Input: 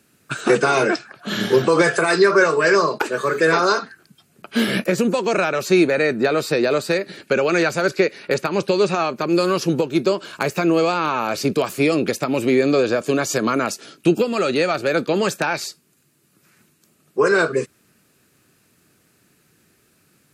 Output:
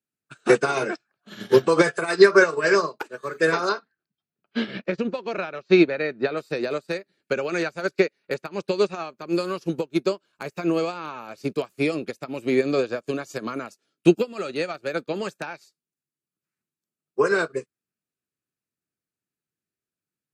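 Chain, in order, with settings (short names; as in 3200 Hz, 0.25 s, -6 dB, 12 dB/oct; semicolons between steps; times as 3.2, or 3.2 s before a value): 3.69–6.37 LPF 4800 Hz 24 dB/oct; upward expander 2.5:1, over -34 dBFS; gain +3 dB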